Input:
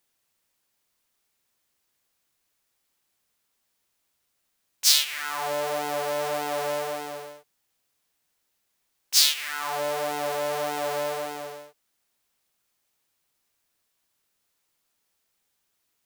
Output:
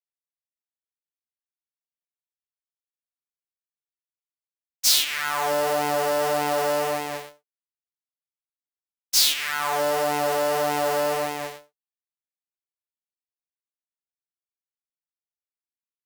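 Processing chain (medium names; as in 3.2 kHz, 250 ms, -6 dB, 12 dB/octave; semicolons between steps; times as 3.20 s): expander -37 dBFS; in parallel at -3 dB: fuzz box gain 28 dB, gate -37 dBFS; on the sum: trim -5 dB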